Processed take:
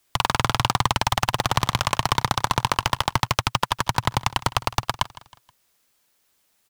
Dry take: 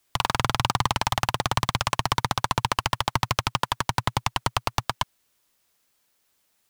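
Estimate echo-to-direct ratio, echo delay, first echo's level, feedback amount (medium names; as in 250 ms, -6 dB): -18.0 dB, 159 ms, -19.0 dB, 43%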